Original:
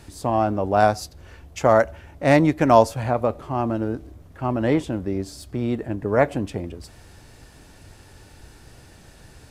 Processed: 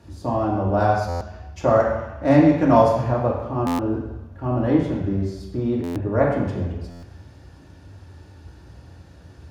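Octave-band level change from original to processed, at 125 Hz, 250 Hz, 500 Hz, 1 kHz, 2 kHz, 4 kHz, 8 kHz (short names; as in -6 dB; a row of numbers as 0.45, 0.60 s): +3.0 dB, +3.0 dB, 0.0 dB, -1.0 dB, -3.5 dB, -4.5 dB, n/a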